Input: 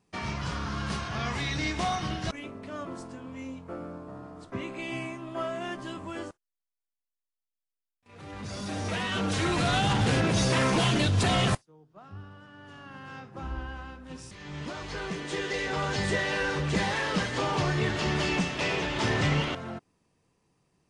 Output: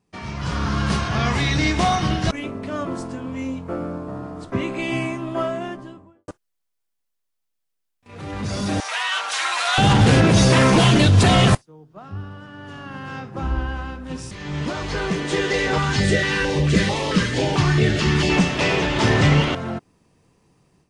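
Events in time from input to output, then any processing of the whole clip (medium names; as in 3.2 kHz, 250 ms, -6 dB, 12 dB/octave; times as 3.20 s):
5.18–6.28 s: studio fade out
8.80–9.78 s: high-pass 840 Hz 24 dB/octave
15.78–18.30 s: step-sequenced notch 4.5 Hz 540–1600 Hz
whole clip: bass shelf 490 Hz +3.5 dB; level rider gain up to 11 dB; trim -2 dB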